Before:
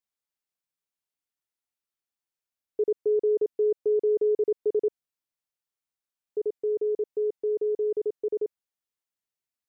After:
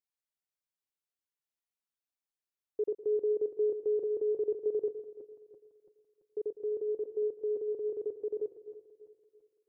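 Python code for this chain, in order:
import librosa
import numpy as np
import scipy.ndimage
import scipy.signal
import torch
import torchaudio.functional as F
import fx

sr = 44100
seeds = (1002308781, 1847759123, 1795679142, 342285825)

y = fx.reverse_delay_fb(x, sr, ms=168, feedback_pct=62, wet_db=-14)
y = fx.echo_feedback(y, sr, ms=110, feedback_pct=36, wet_db=-15.0)
y = y * librosa.db_to_amplitude(-6.5)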